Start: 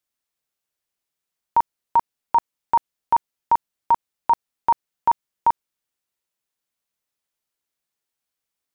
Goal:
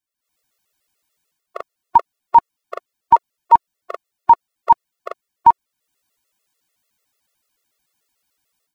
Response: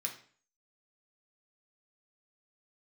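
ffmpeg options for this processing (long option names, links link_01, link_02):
-af "dynaudnorm=framelen=180:gausssize=3:maxgain=16dB,afftfilt=real='re*gt(sin(2*PI*6.8*pts/sr)*(1-2*mod(floor(b*sr/1024/360),2)),0)':imag='im*gt(sin(2*PI*6.8*pts/sr)*(1-2*mod(floor(b*sr/1024/360),2)),0)':win_size=1024:overlap=0.75,volume=-1dB"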